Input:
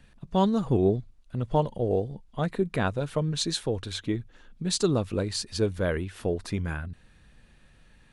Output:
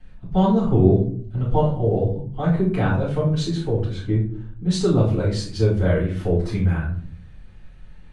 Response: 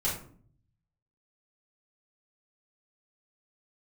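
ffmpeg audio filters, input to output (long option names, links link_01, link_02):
-filter_complex "[0:a]asetnsamples=nb_out_samples=441:pad=0,asendcmd='3.43 lowpass f 1200;4.69 lowpass f 3600',lowpass=frequency=2800:poles=1[link_01];[1:a]atrim=start_sample=2205[link_02];[link_01][link_02]afir=irnorm=-1:irlink=0,volume=-2.5dB"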